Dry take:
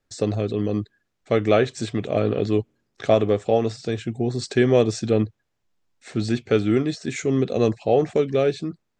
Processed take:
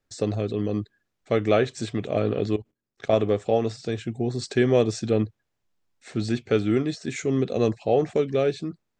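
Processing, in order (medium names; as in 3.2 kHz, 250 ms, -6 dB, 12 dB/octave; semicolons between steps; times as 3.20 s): 2.56–3.13 s: level held to a coarse grid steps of 17 dB; trim -2.5 dB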